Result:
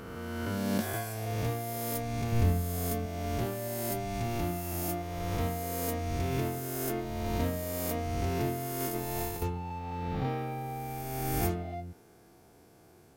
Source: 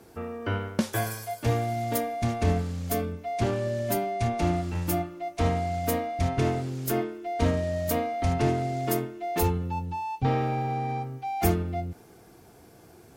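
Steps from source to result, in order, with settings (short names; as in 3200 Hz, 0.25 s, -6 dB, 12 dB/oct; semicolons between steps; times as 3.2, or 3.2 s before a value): spectral swells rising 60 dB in 2.13 s; 2.32–3.06 low shelf 120 Hz +10.5 dB; 8.8–9.42 negative-ratio compressor -24 dBFS, ratio -0.5; gain -9 dB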